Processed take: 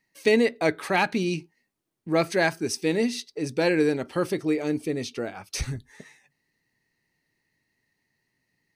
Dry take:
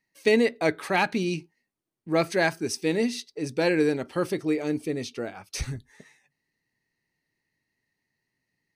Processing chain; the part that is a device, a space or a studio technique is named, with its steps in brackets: parallel compression (in parallel at -3 dB: compression, threshold -40 dBFS, peak gain reduction 22 dB)

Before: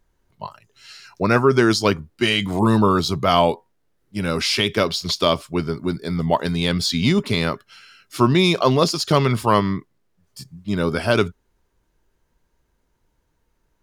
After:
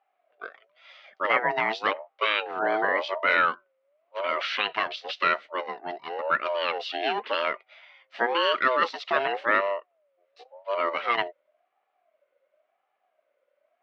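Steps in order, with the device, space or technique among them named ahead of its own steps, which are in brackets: voice changer toy (ring modulator with a swept carrier 660 Hz, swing 20%, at 0.93 Hz; cabinet simulation 500–3500 Hz, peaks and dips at 600 Hz +8 dB, 880 Hz -7 dB, 1.3 kHz +7 dB, 2.1 kHz +6 dB, 2.9 kHz +4 dB); trim -5 dB

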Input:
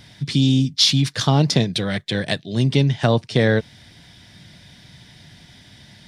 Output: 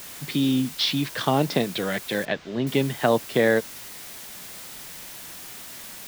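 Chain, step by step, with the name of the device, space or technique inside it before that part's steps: wax cylinder (band-pass 270–2600 Hz; wow and flutter; white noise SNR 14 dB); 2.25–2.67 s: distance through air 180 m

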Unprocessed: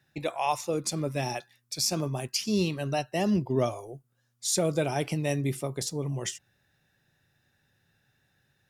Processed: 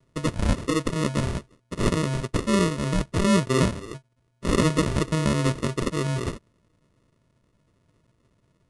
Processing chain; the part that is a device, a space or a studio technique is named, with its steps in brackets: crushed at another speed (playback speed 2×; sample-and-hold 28×; playback speed 0.5×); trim +5.5 dB

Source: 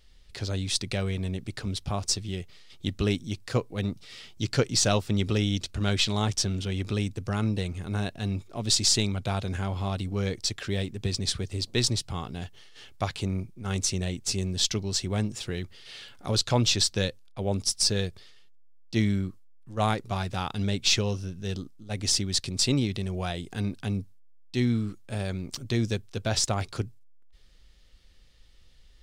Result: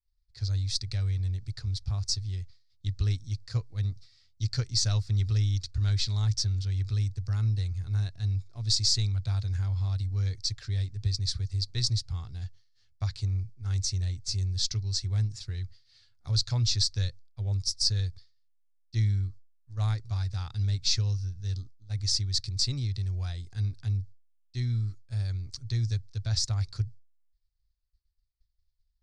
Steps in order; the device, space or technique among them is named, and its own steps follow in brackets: hearing-loss simulation (low-pass 2.7 kHz 12 dB/octave; expander -39 dBFS); FFT filter 110 Hz 0 dB, 190 Hz -21 dB, 580 Hz -23 dB, 1.9 kHz -13 dB, 3 kHz -17 dB, 4.5 kHz +7 dB; trim +3.5 dB

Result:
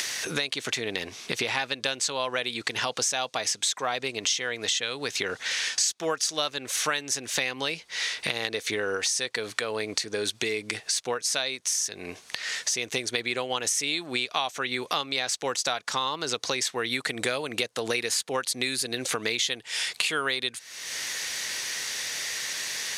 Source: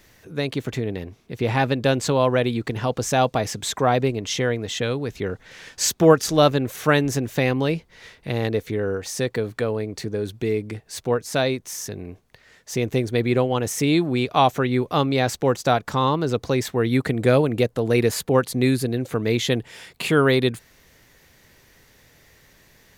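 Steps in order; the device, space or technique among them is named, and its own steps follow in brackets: frequency weighting ITU-R 468; upward and downward compression (upward compressor, threshold -21 dBFS; compression 6:1, threshold -27 dBFS, peak gain reduction 19 dB); band-stop 7.3 kHz, Q 22; trim +2.5 dB

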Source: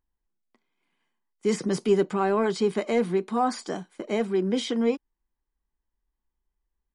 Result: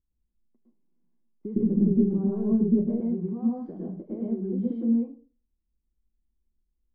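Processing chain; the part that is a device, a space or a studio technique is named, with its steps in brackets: television next door (compression 4:1, threshold -29 dBFS, peak gain reduction 11 dB; low-pass 280 Hz 12 dB/octave; reverberation RT60 0.35 s, pre-delay 103 ms, DRR -4 dB); 1.56–3.01 s: tilt EQ -3.5 dB/octave

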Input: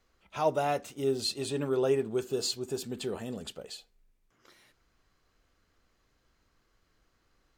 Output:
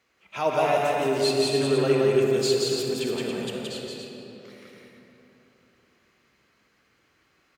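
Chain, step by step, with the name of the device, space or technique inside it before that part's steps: stadium PA (high-pass 130 Hz 12 dB/octave; peaking EQ 2.3 kHz +8 dB 0.83 oct; loudspeakers at several distances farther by 59 m -2 dB, 96 m -7 dB; reverberation RT60 3.6 s, pre-delay 35 ms, DRR 2 dB); trim +1.5 dB

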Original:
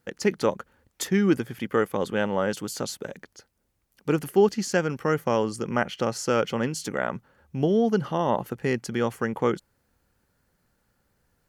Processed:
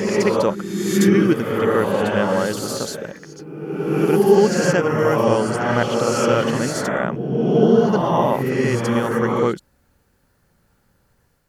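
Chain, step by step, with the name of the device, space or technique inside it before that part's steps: reverse reverb (reverse; reverberation RT60 1.6 s, pre-delay 55 ms, DRR -2 dB; reverse); trim +3 dB

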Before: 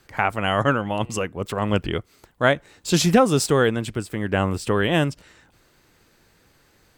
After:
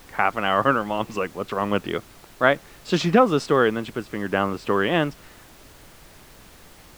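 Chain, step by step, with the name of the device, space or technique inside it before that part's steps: horn gramophone (band-pass 190–3400 Hz; peaking EQ 1.2 kHz +5 dB 0.29 oct; wow and flutter; pink noise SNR 24 dB)

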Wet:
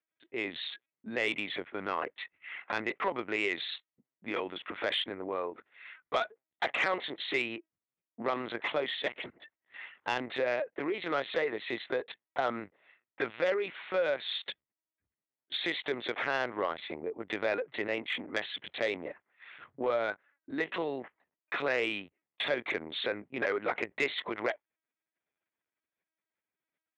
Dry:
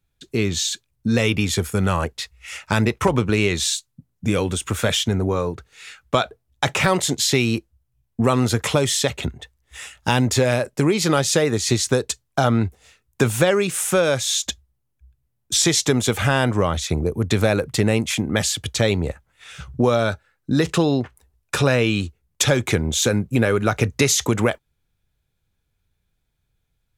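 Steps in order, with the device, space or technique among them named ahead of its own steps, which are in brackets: local Wiener filter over 9 samples; talking toy (LPC vocoder at 8 kHz pitch kept; high-pass 460 Hz 12 dB/octave; peaking EQ 2 kHz +7.5 dB 0.3 oct; saturation -10 dBFS, distortion -20 dB); trim -8 dB

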